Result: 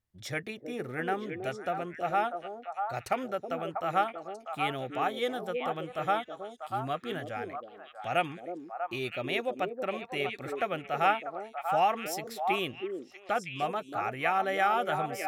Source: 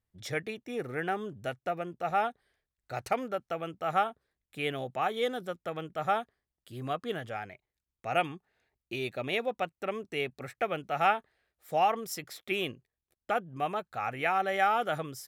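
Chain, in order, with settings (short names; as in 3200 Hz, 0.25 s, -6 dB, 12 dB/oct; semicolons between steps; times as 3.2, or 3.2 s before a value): notch 450 Hz, Q 12; delay with a stepping band-pass 0.321 s, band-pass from 360 Hz, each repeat 1.4 oct, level -1 dB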